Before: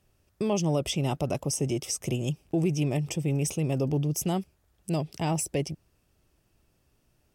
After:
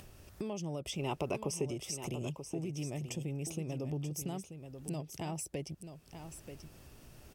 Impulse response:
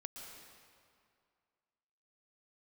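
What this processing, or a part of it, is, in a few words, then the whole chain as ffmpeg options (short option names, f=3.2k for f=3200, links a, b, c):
upward and downward compression: -filter_complex "[0:a]acompressor=mode=upward:threshold=-31dB:ratio=2.5,acompressor=threshold=-29dB:ratio=6,asettb=1/sr,asplit=3[a][b][c];[a]atrim=end=0.994[d];[b]atrim=start=0.99:end=1.66,asetpts=PTS-STARTPTS,afade=t=in:d=0.004:c=qsin,afade=t=out:st=0.666:d=0.004:c=qsin,equalizer=f=400:t=o:w=0.67:g=9,equalizer=f=1k:t=o:w=0.67:g=10,equalizer=f=2.5k:t=o:w=0.67:g=11[e];[c]atrim=start=1.656[f];[d][e]acrossfade=d=0.004:c1=hsin:c2=qsin[g];[g][f]acrossfade=d=0.004:c1=qsin:c2=hsin,aecho=1:1:934:0.335,volume=-6.5dB"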